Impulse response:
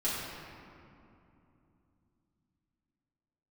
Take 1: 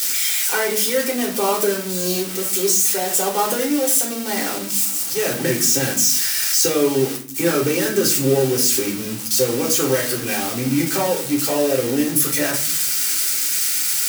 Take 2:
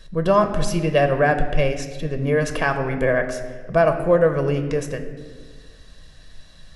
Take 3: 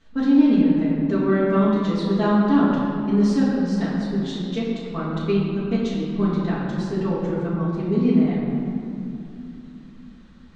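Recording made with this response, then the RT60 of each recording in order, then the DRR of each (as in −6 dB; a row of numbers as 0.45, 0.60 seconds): 3; 0.50, 1.6, 2.8 seconds; −2.5, 6.5, −9.5 decibels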